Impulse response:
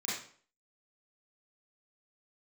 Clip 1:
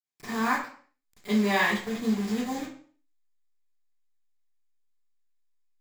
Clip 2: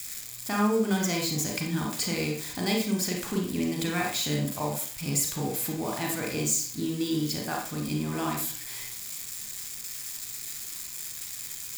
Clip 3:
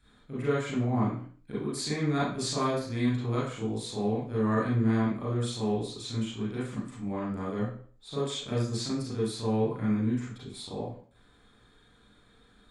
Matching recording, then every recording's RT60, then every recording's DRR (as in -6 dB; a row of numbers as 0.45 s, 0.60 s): 3; 0.50 s, 0.50 s, 0.50 s; -17.5 dB, 0.0 dB, -9.0 dB